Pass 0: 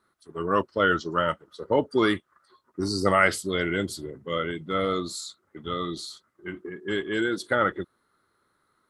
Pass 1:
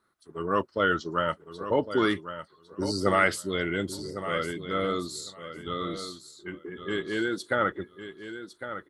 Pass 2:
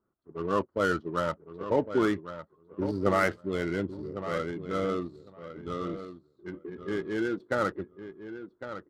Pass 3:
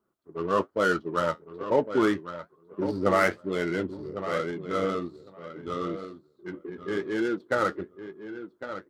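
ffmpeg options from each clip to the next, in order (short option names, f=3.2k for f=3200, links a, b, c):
-af "aecho=1:1:1105|2210:0.282|0.0451,volume=-2.5dB"
-af "highshelf=f=2.1k:g=-12,adynamicsmooth=sensitivity=8:basefreq=930"
-af "lowshelf=f=140:g=-9.5,flanger=delay=4.8:depth=7.6:regen=-56:speed=1.1:shape=sinusoidal,volume=7.5dB"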